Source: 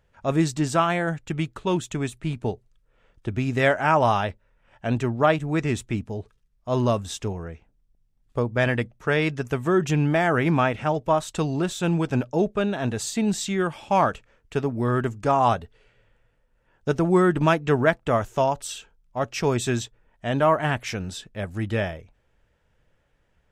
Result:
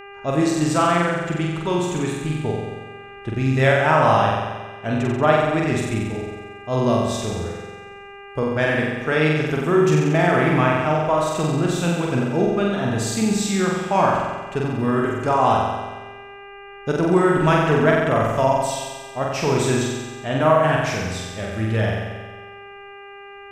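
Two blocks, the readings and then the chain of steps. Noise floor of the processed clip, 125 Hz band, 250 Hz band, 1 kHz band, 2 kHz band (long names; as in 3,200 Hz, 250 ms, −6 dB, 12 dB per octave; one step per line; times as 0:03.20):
−40 dBFS, +4.0 dB, +4.0 dB, +4.0 dB, +4.5 dB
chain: flutter between parallel walls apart 7.8 metres, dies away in 1.3 s
hum with harmonics 400 Hz, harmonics 7, −40 dBFS −3 dB per octave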